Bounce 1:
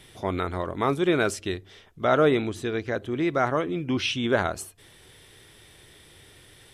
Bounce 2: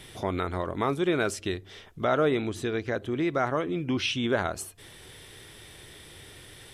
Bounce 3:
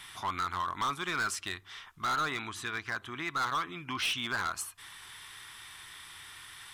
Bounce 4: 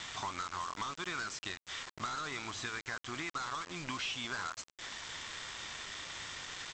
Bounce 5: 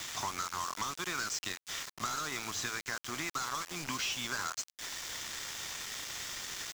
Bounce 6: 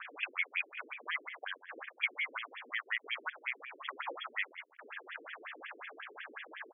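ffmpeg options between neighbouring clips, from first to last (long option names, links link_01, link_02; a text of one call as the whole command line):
ffmpeg -i in.wav -af "acompressor=threshold=-39dB:ratio=1.5,volume=4dB" out.wav
ffmpeg -i in.wav -af "lowshelf=frequency=750:width_type=q:width=3:gain=-12.5,asoftclip=type=hard:threshold=-27.5dB" out.wav
ffmpeg -i in.wav -af "acompressor=threshold=-41dB:ratio=8,aresample=16000,acrusher=bits=7:mix=0:aa=0.000001,aresample=44100,volume=4dB" out.wav
ffmpeg -i in.wav -filter_complex "[0:a]acrossover=split=180|870|2300[link_01][link_02][link_03][link_04];[link_04]aexciter=amount=2.7:drive=3.3:freq=5000[link_05];[link_01][link_02][link_03][link_05]amix=inputs=4:normalize=0,aeval=exprs='val(0)*gte(abs(val(0)),0.00794)':channel_layout=same,volume=2dB" out.wav
ffmpeg -i in.wav -filter_complex "[0:a]lowpass=frequency=3000:width_type=q:width=0.5098,lowpass=frequency=3000:width_type=q:width=0.6013,lowpass=frequency=3000:width_type=q:width=0.9,lowpass=frequency=3000:width_type=q:width=2.563,afreqshift=-3500,asplit=2[link_01][link_02];[link_02]adelay=130,highpass=300,lowpass=3400,asoftclip=type=hard:threshold=-33.5dB,volume=-13dB[link_03];[link_01][link_03]amix=inputs=2:normalize=0,afftfilt=real='re*between(b*sr/1024,330*pow(2500/330,0.5+0.5*sin(2*PI*5.5*pts/sr))/1.41,330*pow(2500/330,0.5+0.5*sin(2*PI*5.5*pts/sr))*1.41)':imag='im*between(b*sr/1024,330*pow(2500/330,0.5+0.5*sin(2*PI*5.5*pts/sr))/1.41,330*pow(2500/330,0.5+0.5*sin(2*PI*5.5*pts/sr))*1.41)':win_size=1024:overlap=0.75,volume=5dB" out.wav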